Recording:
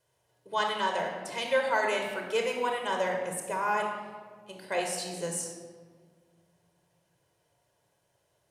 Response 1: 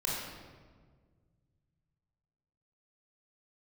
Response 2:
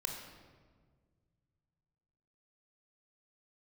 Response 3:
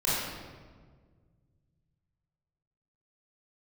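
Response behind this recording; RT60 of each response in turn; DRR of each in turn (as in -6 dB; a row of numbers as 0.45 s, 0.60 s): 2; 1.6 s, 1.7 s, 1.6 s; -5.0 dB, 2.0 dB, -9.5 dB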